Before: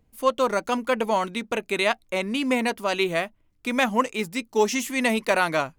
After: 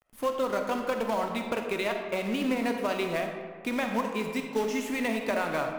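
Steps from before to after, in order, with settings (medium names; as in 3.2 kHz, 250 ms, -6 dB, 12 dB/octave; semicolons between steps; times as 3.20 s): compression 4:1, threshold -27 dBFS, peak gain reduction 11 dB; companded quantiser 4-bit; treble shelf 3.3 kHz -9 dB; algorithmic reverb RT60 1.8 s, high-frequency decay 0.5×, pre-delay 5 ms, DRR 3.5 dB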